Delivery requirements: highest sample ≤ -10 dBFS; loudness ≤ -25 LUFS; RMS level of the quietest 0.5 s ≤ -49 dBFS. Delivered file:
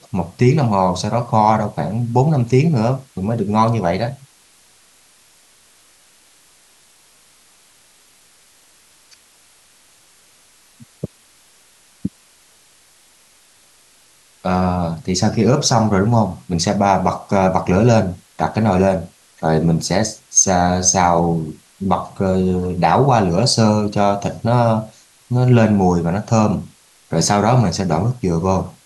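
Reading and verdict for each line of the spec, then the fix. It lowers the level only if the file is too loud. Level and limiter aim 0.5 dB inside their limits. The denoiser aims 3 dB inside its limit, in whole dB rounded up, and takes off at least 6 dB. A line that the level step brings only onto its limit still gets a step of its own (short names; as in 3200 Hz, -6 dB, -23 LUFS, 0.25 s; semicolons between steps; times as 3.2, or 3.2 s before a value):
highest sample -2.0 dBFS: fail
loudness -16.5 LUFS: fail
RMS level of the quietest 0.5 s -52 dBFS: OK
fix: gain -9 dB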